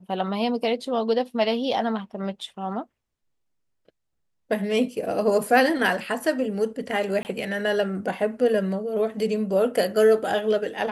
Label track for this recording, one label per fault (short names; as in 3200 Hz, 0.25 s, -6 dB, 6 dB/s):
7.230000	7.250000	gap 19 ms